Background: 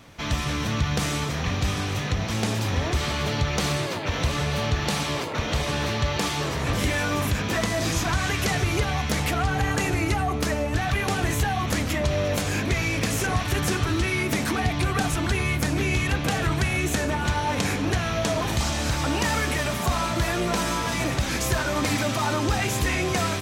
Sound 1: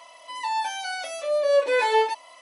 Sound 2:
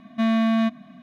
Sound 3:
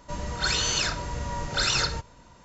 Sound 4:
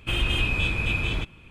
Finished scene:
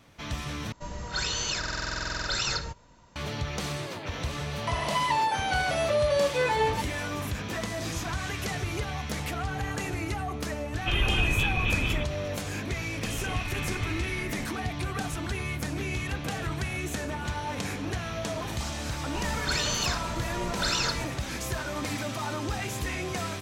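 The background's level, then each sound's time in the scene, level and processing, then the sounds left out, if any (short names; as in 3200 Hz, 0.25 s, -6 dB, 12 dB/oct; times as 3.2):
background -8 dB
0.72 replace with 3 -4.5 dB + stuck buffer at 0.87, samples 2048, times 14
4.67 add 1 -4 dB + three-band squash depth 100%
10.79 add 4 -1.5 dB + downsampling 8000 Hz
12.96 add 4 -13.5 dB + echoes that change speed 0.221 s, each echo -3 st, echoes 2
19.05 add 3 -3.5 dB
not used: 2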